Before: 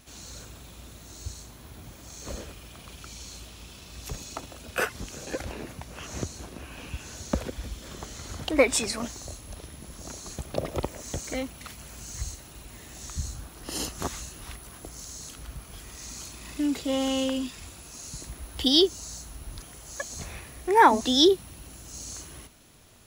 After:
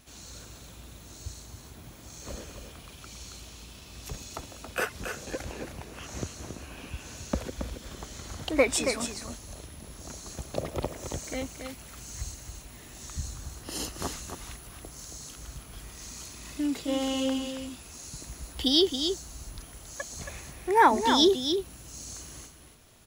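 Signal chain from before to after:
single-tap delay 275 ms −7 dB
level −2.5 dB

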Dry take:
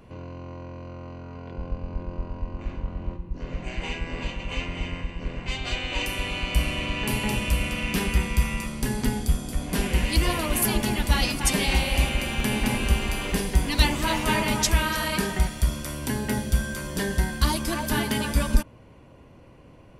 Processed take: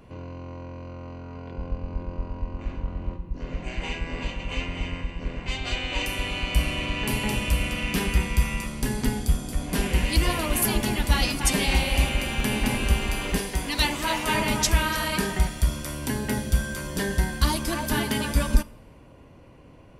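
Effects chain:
0:13.38–0:14.34: low-shelf EQ 240 Hz −8.5 dB
coupled-rooms reverb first 0.51 s, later 2 s, from −17 dB, DRR 17.5 dB

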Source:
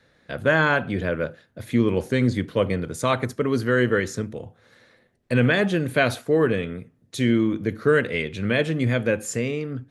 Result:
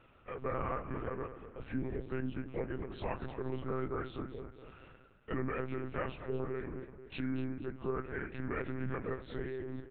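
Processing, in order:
partials spread apart or drawn together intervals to 86%
downward compressor 2 to 1, threshold −47 dBFS, peak gain reduction 17 dB
repeating echo 236 ms, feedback 48%, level −11.5 dB
one-pitch LPC vocoder at 8 kHz 130 Hz

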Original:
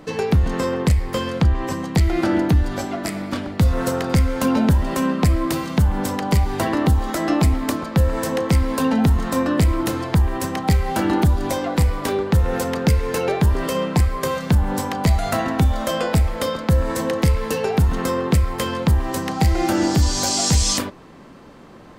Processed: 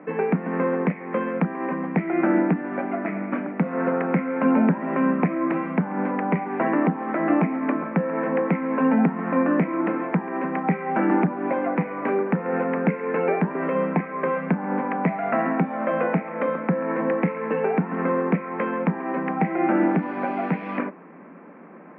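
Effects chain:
Chebyshev band-pass filter 170–2,400 Hz, order 5

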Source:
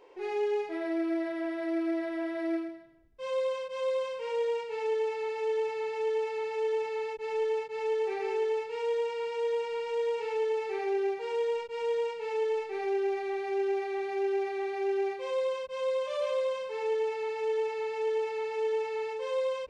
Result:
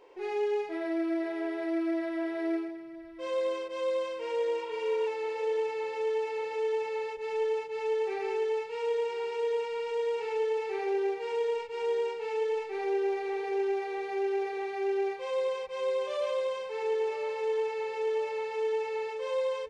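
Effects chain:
repeating echo 1,018 ms, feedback 54%, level −17 dB
healed spectral selection 0:04.63–0:05.04, 710–4,000 Hz before

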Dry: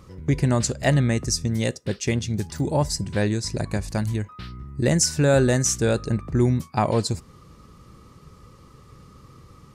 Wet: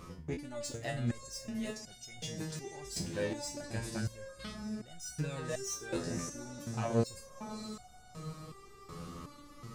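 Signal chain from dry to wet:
reversed playback
downward compressor 6 to 1, threshold −32 dBFS, peak gain reduction 17 dB
reversed playback
parametric band 88 Hz −14 dB 0.3 octaves
on a send: feedback delay with all-pass diffusion 590 ms, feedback 46%, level −10 dB
on the sum: soft clipping −29.5 dBFS, distortion −16 dB
step-sequenced resonator 2.7 Hz 85–730 Hz
level +12.5 dB

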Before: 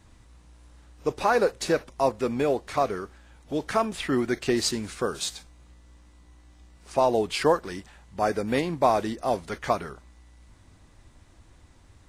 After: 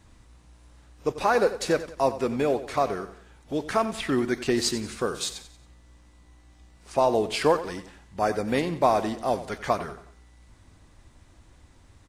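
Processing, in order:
repeating echo 91 ms, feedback 42%, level −14 dB

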